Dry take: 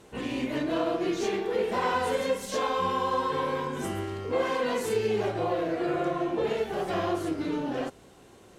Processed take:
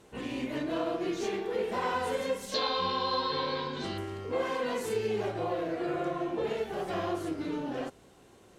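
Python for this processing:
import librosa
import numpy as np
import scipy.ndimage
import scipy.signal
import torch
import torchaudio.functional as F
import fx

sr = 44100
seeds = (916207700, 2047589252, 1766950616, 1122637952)

y = fx.lowpass_res(x, sr, hz=4200.0, q=9.6, at=(2.54, 3.98))
y = F.gain(torch.from_numpy(y), -4.0).numpy()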